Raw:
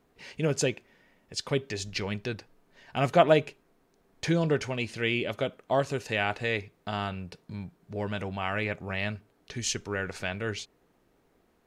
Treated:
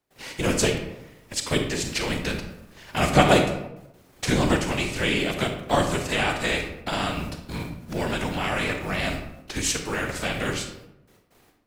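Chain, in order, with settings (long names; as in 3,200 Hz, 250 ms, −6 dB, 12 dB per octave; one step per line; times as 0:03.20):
spectral envelope flattened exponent 0.6
dynamic equaliser 7,900 Hz, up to +7 dB, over −59 dBFS, Q 5
in parallel at 0 dB: downward compressor, threshold −37 dBFS, peak gain reduction 21 dB
on the sum: noise gate with hold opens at −49 dBFS
random phases in short frames
on a send at −5 dB: convolution reverb RT60 0.90 s, pre-delay 33 ms
on the sum: level +1.5 dB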